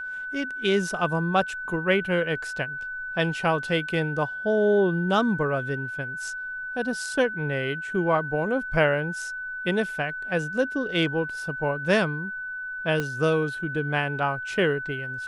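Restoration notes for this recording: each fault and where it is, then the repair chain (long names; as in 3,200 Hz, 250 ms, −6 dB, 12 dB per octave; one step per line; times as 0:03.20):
whistle 1,500 Hz −31 dBFS
0:13.00: click −14 dBFS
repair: click removal
notch filter 1,500 Hz, Q 30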